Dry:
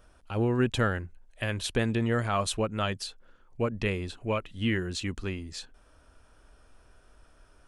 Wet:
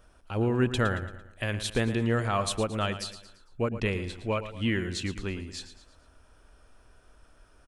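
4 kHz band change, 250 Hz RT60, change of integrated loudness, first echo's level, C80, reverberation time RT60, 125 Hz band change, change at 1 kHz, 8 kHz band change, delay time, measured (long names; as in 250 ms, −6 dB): +0.5 dB, no reverb audible, +0.5 dB, −12.0 dB, no reverb audible, no reverb audible, +0.5 dB, +0.5 dB, +0.5 dB, 113 ms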